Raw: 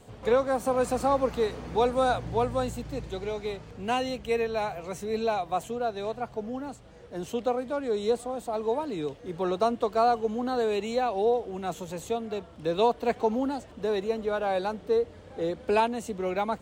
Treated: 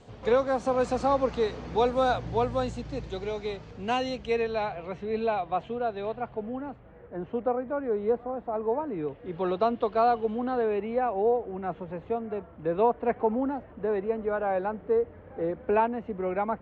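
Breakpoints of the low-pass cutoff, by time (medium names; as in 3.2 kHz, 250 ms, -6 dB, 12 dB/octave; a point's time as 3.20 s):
low-pass 24 dB/octave
4.21 s 6.4 kHz
4.89 s 3.3 kHz
6.10 s 3.3 kHz
7.17 s 1.9 kHz
8.92 s 1.9 kHz
9.41 s 3.6 kHz
10.30 s 3.6 kHz
10.79 s 2.1 kHz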